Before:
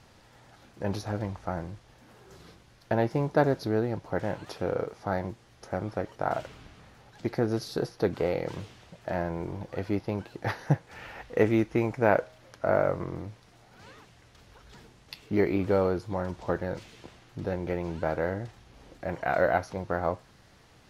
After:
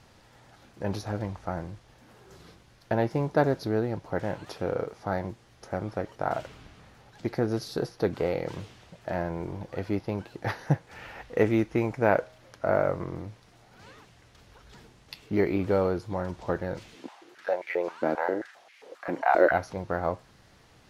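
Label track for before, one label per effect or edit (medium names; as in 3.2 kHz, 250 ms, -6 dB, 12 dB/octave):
16.950000	19.510000	step-sequenced high-pass 7.5 Hz 260–2100 Hz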